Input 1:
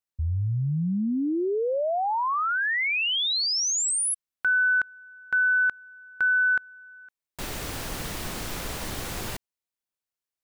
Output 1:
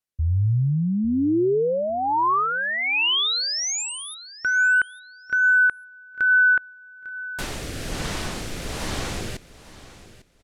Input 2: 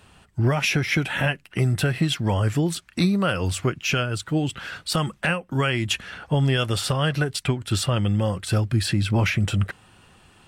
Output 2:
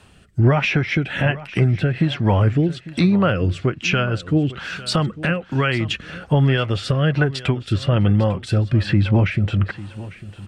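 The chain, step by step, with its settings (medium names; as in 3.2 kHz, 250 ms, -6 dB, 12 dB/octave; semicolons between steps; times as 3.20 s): rotary cabinet horn 1.2 Hz; low-pass that closes with the level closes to 2.5 kHz, closed at -21 dBFS; feedback delay 850 ms, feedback 22%, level -17 dB; trim +6 dB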